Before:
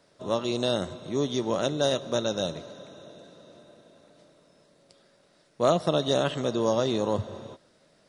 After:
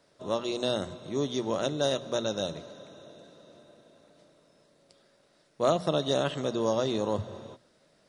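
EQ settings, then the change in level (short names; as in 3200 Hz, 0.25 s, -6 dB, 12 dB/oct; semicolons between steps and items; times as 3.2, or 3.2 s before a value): notches 60/120/180/240 Hz; -2.5 dB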